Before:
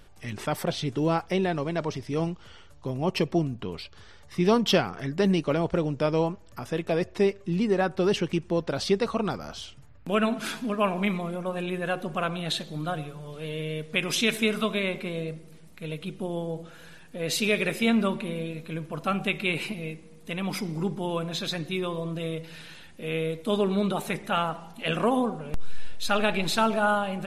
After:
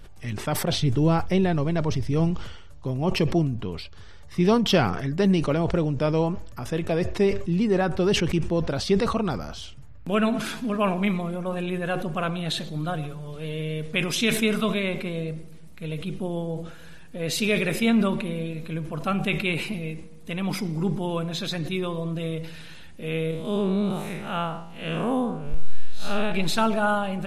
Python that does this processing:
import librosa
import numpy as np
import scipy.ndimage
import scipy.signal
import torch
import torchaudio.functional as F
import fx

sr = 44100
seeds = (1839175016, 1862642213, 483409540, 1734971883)

y = fx.low_shelf(x, sr, hz=120.0, db=11.0, at=(0.79, 2.31))
y = fx.spec_blur(y, sr, span_ms=131.0, at=(23.31, 26.32))
y = fx.low_shelf(y, sr, hz=140.0, db=9.0)
y = fx.sustainer(y, sr, db_per_s=62.0)